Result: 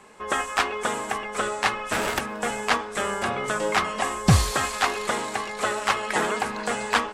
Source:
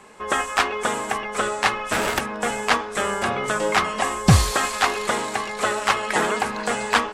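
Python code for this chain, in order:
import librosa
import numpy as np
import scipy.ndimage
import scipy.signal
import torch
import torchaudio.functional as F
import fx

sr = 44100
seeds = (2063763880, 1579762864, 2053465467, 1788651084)

y = x + 10.0 ** (-23.5 / 20.0) * np.pad(x, (int(274 * sr / 1000.0), 0))[:len(x)]
y = y * librosa.db_to_amplitude(-3.0)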